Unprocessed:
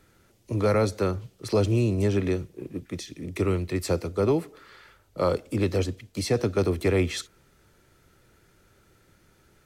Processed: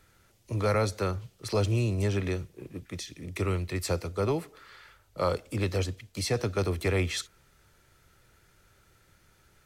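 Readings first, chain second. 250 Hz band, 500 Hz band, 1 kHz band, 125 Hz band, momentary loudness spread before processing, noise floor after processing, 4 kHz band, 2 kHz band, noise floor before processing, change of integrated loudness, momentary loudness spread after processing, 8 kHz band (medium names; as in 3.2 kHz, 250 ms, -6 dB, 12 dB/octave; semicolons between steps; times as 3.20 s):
-6.5 dB, -5.0 dB, -1.5 dB, -2.0 dB, 13 LU, -64 dBFS, 0.0 dB, -0.5 dB, -62 dBFS, -4.0 dB, 12 LU, 0.0 dB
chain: peaking EQ 290 Hz -7.5 dB 1.9 oct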